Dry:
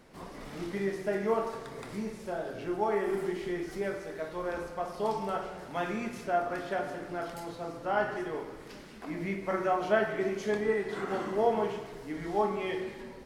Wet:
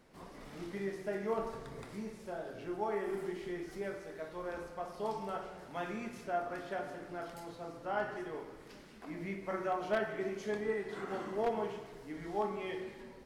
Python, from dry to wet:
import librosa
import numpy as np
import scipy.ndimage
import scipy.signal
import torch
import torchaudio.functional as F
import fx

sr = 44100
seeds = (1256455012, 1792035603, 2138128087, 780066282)

y = np.minimum(x, 2.0 * 10.0 ** (-19.0 / 20.0) - x)
y = fx.low_shelf(y, sr, hz=160.0, db=11.5, at=(1.38, 1.85))
y = y * librosa.db_to_amplitude(-6.5)